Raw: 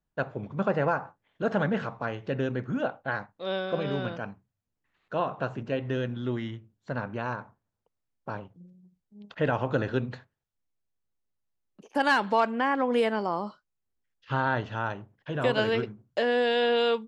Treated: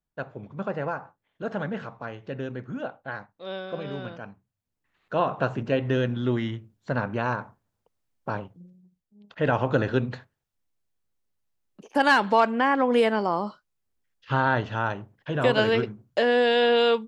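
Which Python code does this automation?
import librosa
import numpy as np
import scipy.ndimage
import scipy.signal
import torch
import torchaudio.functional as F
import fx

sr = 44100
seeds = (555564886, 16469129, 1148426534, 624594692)

y = fx.gain(x, sr, db=fx.line((4.26, -4.0), (5.34, 5.5), (8.39, 5.5), (9.23, -6.0), (9.5, 4.0)))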